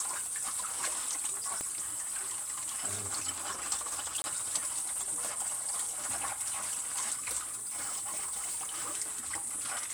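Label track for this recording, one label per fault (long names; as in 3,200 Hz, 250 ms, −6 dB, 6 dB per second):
1.610000	1.610000	click −21 dBFS
4.220000	4.240000	drop-out 20 ms
7.400000	8.950000	clipping −32.5 dBFS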